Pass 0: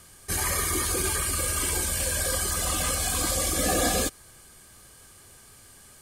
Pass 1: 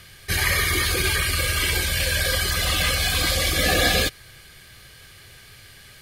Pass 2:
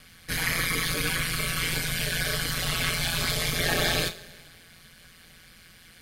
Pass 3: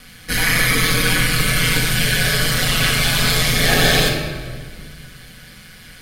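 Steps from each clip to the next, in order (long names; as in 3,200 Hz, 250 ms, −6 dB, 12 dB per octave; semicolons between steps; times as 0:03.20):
octave-band graphic EQ 125/250/1,000/2,000/4,000/8,000 Hz +5/−7/−7/+8/+7/−11 dB; level +5.5 dB
coupled-rooms reverb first 0.23 s, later 1.9 s, from −21 dB, DRR 3.5 dB; ring modulation 86 Hz; level −4 dB
rectangular room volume 1,700 cubic metres, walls mixed, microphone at 1.9 metres; level +7.5 dB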